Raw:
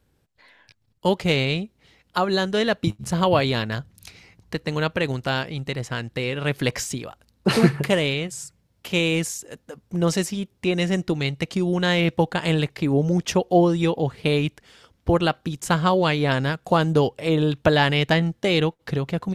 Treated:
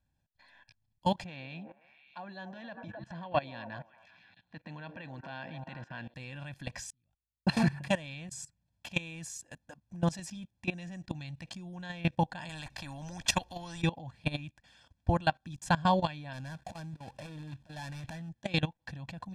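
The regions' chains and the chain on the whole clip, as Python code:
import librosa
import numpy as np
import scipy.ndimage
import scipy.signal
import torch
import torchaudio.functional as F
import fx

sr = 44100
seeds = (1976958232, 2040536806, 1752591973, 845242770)

y = fx.chain(x, sr, fx.transient(attack_db=-10, sustain_db=0),
    fx.bandpass_edges(low_hz=180.0, high_hz=3100.0),
    fx.echo_stepped(ms=132, hz=400.0, octaves=0.7, feedback_pct=70, wet_db=-7.5), at=(1.24, 6.14))
y = fx.chain(y, sr, fx.level_steps(step_db=23),
    fx.tone_stack(knobs='10-0-1'), at=(6.9, 7.47))
y = fx.chain(y, sr, fx.low_shelf(hz=68.0, db=8.5),
    fx.spectral_comp(ratio=2.0), at=(12.49, 13.82))
y = fx.chain(y, sr, fx.dead_time(dead_ms=0.19),
    fx.over_compress(threshold_db=-26.0, ratio=-0.5), at=(16.33, 18.29))
y = fx.level_steps(y, sr, step_db=19)
y = scipy.signal.sosfilt(scipy.signal.butter(2, 9100.0, 'lowpass', fs=sr, output='sos'), y)
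y = y + 0.94 * np.pad(y, (int(1.2 * sr / 1000.0), 0))[:len(y)]
y = y * librosa.db_to_amplitude(-7.0)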